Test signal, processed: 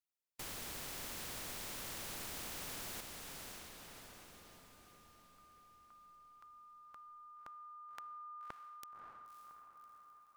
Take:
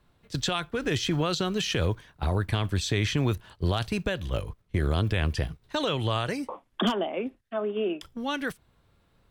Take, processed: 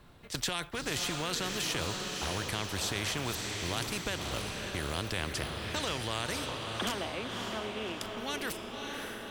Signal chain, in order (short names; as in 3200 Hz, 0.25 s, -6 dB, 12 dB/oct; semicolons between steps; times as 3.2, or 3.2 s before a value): diffused feedback echo 0.579 s, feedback 46%, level -7.5 dB; spectral compressor 2:1; gain -5 dB